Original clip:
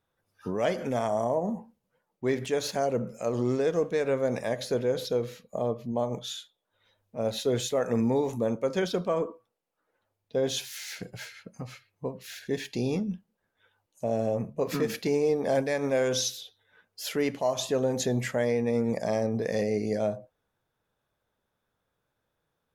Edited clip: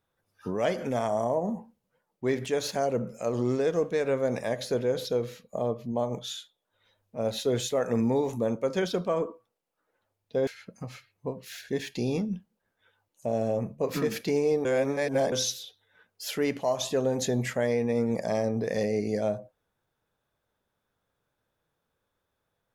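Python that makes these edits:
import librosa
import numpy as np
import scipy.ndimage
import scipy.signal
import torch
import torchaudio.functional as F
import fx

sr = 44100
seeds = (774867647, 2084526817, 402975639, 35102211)

y = fx.edit(x, sr, fx.cut(start_s=10.47, length_s=0.78),
    fx.reverse_span(start_s=15.43, length_s=0.67), tone=tone)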